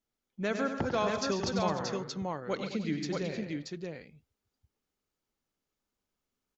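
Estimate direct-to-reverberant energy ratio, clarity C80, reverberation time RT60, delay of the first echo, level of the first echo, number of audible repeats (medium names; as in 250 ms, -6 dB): no reverb, no reverb, no reverb, 97 ms, -8.0 dB, 5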